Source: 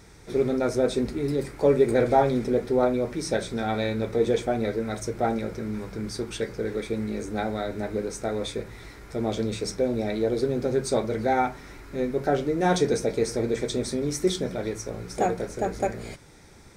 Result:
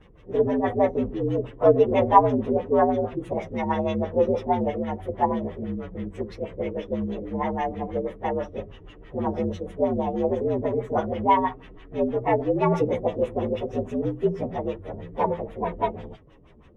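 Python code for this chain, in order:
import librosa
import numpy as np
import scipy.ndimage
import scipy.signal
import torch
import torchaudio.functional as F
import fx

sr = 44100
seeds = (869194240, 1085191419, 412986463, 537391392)

y = fx.partial_stretch(x, sr, pct=118)
y = fx.filter_lfo_lowpass(y, sr, shape='sine', hz=6.2, low_hz=360.0, high_hz=3100.0, q=1.1)
y = fx.dynamic_eq(y, sr, hz=1000.0, q=1.2, threshold_db=-41.0, ratio=4.0, max_db=5)
y = y * librosa.db_to_amplitude(2.0)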